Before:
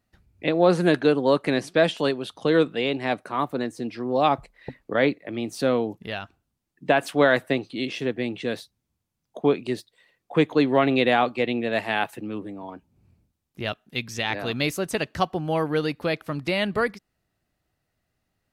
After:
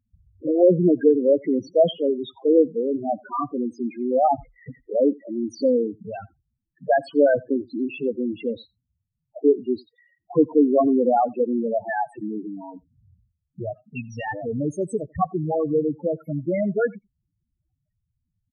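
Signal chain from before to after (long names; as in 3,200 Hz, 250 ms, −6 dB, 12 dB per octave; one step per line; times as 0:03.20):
spectral peaks only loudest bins 4
slap from a distant wall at 15 metres, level −27 dB
level +4.5 dB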